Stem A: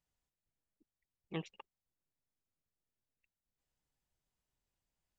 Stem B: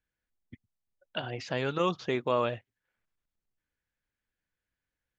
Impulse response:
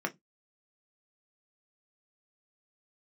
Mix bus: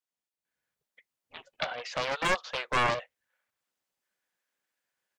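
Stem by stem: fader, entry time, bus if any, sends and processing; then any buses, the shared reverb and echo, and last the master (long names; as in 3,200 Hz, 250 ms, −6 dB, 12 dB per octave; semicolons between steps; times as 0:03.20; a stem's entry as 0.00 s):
−3.5 dB, 0.00 s, no send, gate on every frequency bin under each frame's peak −15 dB weak
−3.5 dB, 0.45 s, send −20.5 dB, elliptic high-pass filter 510 Hz, stop band 40 dB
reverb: on, pre-delay 3 ms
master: automatic gain control gain up to 6.5 dB; highs frequency-modulated by the lows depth 0.69 ms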